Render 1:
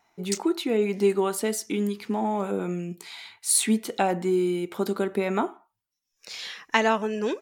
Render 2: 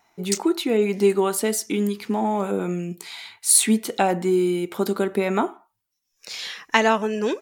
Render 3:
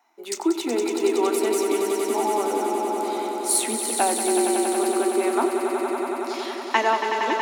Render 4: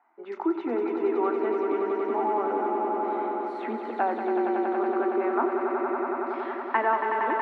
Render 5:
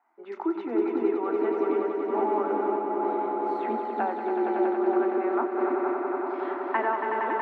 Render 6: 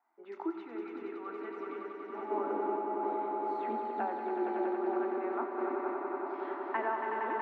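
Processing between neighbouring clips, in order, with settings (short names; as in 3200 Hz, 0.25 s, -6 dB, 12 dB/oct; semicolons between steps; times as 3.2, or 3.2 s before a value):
high shelf 7800 Hz +4 dB; gain +3.5 dB
rippled Chebyshev high-pass 230 Hz, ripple 6 dB; swelling echo 93 ms, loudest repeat 5, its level -8 dB
in parallel at -2 dB: limiter -18.5 dBFS, peak gain reduction 11.5 dB; on the sum: ladder low-pass 1900 Hz, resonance 35%
delay with a stepping band-pass 0.29 s, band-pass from 280 Hz, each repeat 0.7 oct, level 0 dB; noise-modulated level, depth 55%
spectral gain 0.51–2.3, 200–1100 Hz -9 dB; on a send at -8.5 dB: reverb RT60 1.9 s, pre-delay 67 ms; on the sum: gain -7.5 dB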